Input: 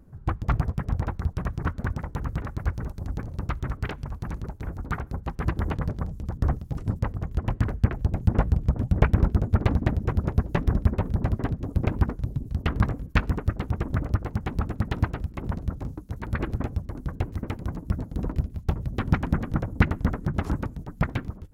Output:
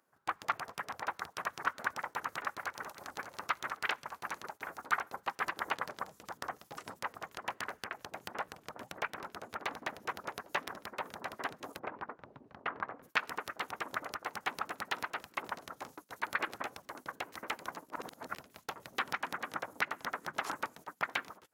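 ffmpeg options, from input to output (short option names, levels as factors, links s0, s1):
-filter_complex "[0:a]asplit=2[s0][s1];[s1]afade=t=in:st=2.01:d=0.01,afade=t=out:st=3.19:d=0.01,aecho=0:1:590|1180|1770:0.141254|0.0494388|0.0173036[s2];[s0][s2]amix=inputs=2:normalize=0,asplit=3[s3][s4][s5];[s3]afade=t=out:st=11.78:d=0.02[s6];[s4]lowpass=1500,afade=t=in:st=11.78:d=0.02,afade=t=out:st=13.02:d=0.02[s7];[s5]afade=t=in:st=13.02:d=0.02[s8];[s6][s7][s8]amix=inputs=3:normalize=0,asplit=3[s9][s10][s11];[s9]atrim=end=17.902[s12];[s10]atrim=start=17.898:end=18.352,asetpts=PTS-STARTPTS,areverse[s13];[s11]atrim=start=18.348[s14];[s12][s13]acrossfade=d=0.004:c1=hsin:c2=hsin[s15];[s15][s14]acrossfade=d=0.004:c1=hsin:c2=hsin,agate=range=0.316:threshold=0.0141:ratio=16:detection=peak,acompressor=threshold=0.0631:ratio=6,highpass=1000,volume=2.11"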